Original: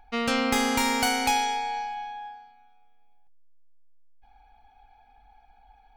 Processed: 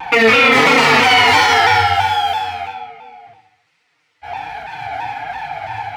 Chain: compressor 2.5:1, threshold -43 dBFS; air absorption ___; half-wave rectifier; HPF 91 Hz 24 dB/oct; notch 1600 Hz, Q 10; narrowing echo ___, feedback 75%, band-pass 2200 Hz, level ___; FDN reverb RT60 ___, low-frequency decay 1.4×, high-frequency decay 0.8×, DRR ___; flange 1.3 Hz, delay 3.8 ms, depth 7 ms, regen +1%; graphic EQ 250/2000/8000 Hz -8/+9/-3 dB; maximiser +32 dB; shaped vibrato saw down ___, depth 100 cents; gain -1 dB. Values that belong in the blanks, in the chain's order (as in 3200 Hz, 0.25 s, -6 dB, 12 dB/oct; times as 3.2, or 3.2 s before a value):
120 m, 62 ms, -6 dB, 0.63 s, -7.5 dB, 3 Hz